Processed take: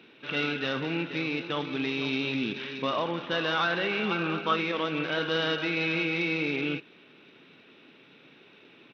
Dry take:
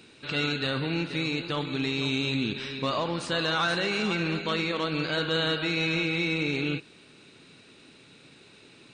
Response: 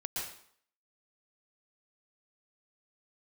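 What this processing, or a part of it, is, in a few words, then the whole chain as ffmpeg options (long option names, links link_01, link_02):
Bluetooth headset: -filter_complex "[0:a]asettb=1/sr,asplit=3[link_01][link_02][link_03];[link_01]atrim=end=4.114[link_04];[link_02]atrim=start=4.11:end=4.57,asetpts=PTS-STARTPTS,afade=type=in:duration=0.004:curve=qsin,afade=type=out:start_time=0.456:duration=0.004:curve=qsin,equalizer=frequency=800:width_type=o:width=0.33:gain=4,equalizer=frequency=1250:width_type=o:width=0.33:gain=11,equalizer=frequency=2000:width_type=o:width=0.33:gain=-9[link_05];[link_03]atrim=start=4.566[link_06];[link_04][link_05]acrossfade=duration=0.004:curve1=hsin:curve2=qsin[link_07];[link_07][link_06]acrossfade=duration=0.004:curve1=qsin:curve2=hsin,highpass=190,aresample=8000,aresample=44100" -ar 32000 -c:a sbc -b:a 64k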